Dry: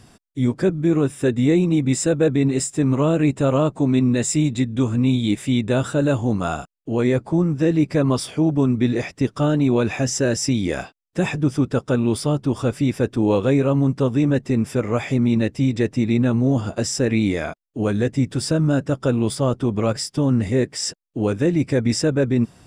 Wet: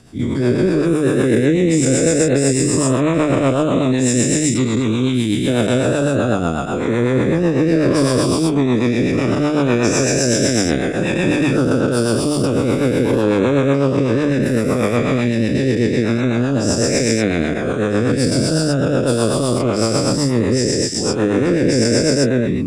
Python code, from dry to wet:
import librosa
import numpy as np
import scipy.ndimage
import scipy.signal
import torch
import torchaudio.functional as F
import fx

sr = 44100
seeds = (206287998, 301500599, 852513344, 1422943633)

y = fx.spec_dilate(x, sr, span_ms=480)
y = fx.rotary(y, sr, hz=8.0)
y = fx.hum_notches(y, sr, base_hz=50, count=3)
y = y * librosa.db_to_amplitude(-1.0)